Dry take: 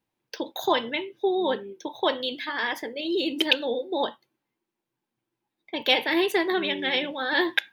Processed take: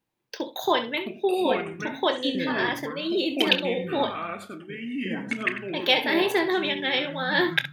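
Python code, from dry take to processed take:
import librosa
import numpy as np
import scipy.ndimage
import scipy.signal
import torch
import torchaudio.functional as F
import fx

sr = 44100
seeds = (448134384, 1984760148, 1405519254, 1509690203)

y = fx.room_early_taps(x, sr, ms=(25, 67), db=(-12.5, -12.0))
y = fx.echo_pitch(y, sr, ms=497, semitones=-6, count=2, db_per_echo=-6.0)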